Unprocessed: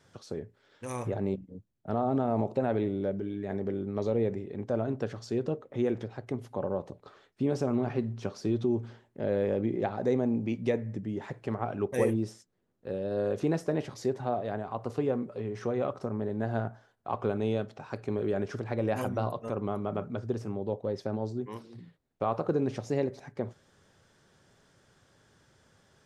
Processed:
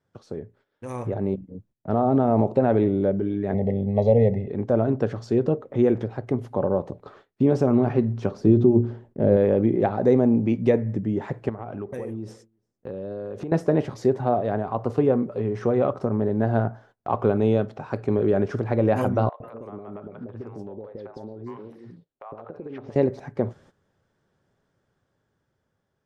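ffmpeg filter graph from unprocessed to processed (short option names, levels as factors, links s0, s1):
-filter_complex "[0:a]asettb=1/sr,asplit=3[s0][s1][s2];[s0]atrim=end=3.544[s3];[s1]atrim=start=3.54:end=4.48,asetpts=PTS-STARTPTS,afade=t=in:d=0.004:c=qsin,afade=t=out:st=0.936:d=0.004:c=qsin,aecho=1:1:1.5:0.96,atrim=end_sample=41454,adynamicsmooth=sensitivity=8:basefreq=3800,asuperstop=centerf=1400:order=12:qfactor=1.9[s4];[s2]atrim=start=4.476[s5];[s3][s4]acrossfade=d=0.004:c1=hsin:c2=qsin[s6];[s6][s5]acrossfade=d=0.004:c1=qsin:c2=hsin,asettb=1/sr,asplit=3[s7][s8][s9];[s7]atrim=end=8.314[s10];[s8]atrim=start=8.31:end=9.37,asetpts=PTS-STARTPTS,afade=t=in:d=0.004:c=qsin,afade=t=out:st=1.056:d=0.004:c=qsin,tiltshelf=f=700:g=5.5,bandreject=f=60:t=h:w=6,bandreject=f=120:t=h:w=6,bandreject=f=180:t=h:w=6,bandreject=f=240:t=h:w=6,bandreject=f=300:t=h:w=6,bandreject=f=360:t=h:w=6,bandreject=f=420:t=h:w=6,bandreject=f=480:t=h:w=6,bandreject=f=540:t=h:w=6[s11];[s9]atrim=start=9.366[s12];[s10][s11]acrossfade=d=0.004:c1=hsin:c2=qsin[s13];[s13][s12]acrossfade=d=0.004:c1=qsin:c2=hsin,asettb=1/sr,asplit=3[s14][s15][s16];[s14]atrim=end=11.494[s17];[s15]atrim=start=11.49:end=13.52,asetpts=PTS-STARTPTS,afade=t=in:d=0.004:c=qsin,afade=t=out:st=2.026:d=0.004:c=qsin,acompressor=threshold=0.0126:ratio=8:attack=3.2:release=140:knee=1:detection=peak,aecho=1:1:343:0.075,atrim=end_sample=89523[s18];[s16]atrim=start=13.516[s19];[s17][s18]acrossfade=d=0.004:c1=hsin:c2=qsin[s20];[s20][s19]acrossfade=d=0.004:c1=qsin:c2=hsin,asettb=1/sr,asplit=3[s21][s22][s23];[s21]atrim=end=19.294[s24];[s22]atrim=start=19.29:end=22.96,asetpts=PTS-STARTPTS,afade=t=in:d=0.004:c=qsin,afade=t=out:st=3.666:d=0.004:c=qsin,bass=f=250:g=-9,treble=f=4000:g=-8,acompressor=threshold=0.01:ratio=12:attack=3.2:release=140:knee=1:detection=peak,acrossover=split=600|3900[s25][s26][s27];[s25]adelay=110[s28];[s27]adelay=180[s29];[s28][s26][s29]amix=inputs=3:normalize=0,atrim=end_sample=161847[s30];[s23]atrim=start=22.956[s31];[s24][s30]acrossfade=d=0.004:c1=hsin:c2=qsin[s32];[s32][s31]acrossfade=d=0.004:c1=qsin:c2=hsin,highshelf=f=2200:g=-11.5,agate=range=0.178:threshold=0.001:ratio=16:detection=peak,dynaudnorm=f=470:g=7:m=2,volume=1.5"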